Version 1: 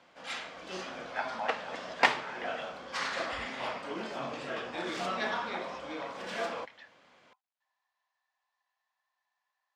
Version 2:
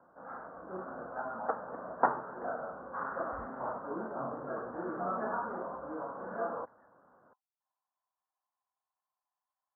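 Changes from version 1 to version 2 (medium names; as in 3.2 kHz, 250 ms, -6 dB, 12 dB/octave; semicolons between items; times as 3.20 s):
speech -6.0 dB; master: add steep low-pass 1.5 kHz 72 dB/octave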